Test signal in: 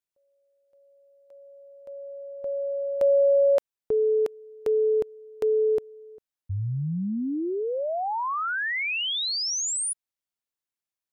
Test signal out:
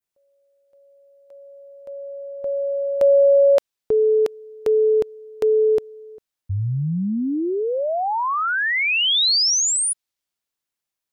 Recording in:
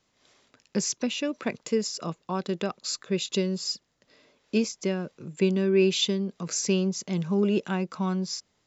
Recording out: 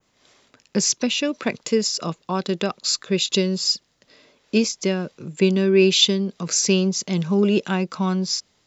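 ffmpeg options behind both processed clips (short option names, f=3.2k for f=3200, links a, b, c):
-af "adynamicequalizer=threshold=0.00562:dfrequency=4300:dqfactor=0.82:tfrequency=4300:tqfactor=0.82:attack=5:release=100:ratio=0.375:range=2.5:mode=boostabove:tftype=bell,volume=5.5dB"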